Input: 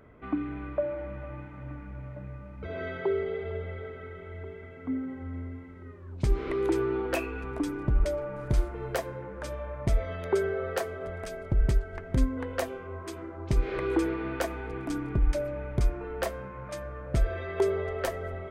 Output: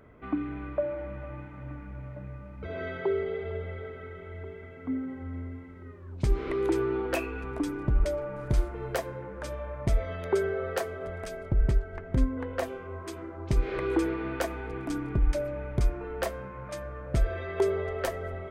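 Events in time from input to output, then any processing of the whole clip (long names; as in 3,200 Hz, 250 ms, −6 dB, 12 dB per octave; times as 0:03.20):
0:11.49–0:12.63: high-shelf EQ 3,400 Hz −8 dB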